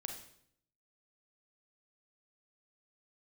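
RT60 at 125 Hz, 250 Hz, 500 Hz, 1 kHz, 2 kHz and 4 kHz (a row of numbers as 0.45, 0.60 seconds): 0.90, 0.85, 0.70, 0.65, 0.60, 0.60 seconds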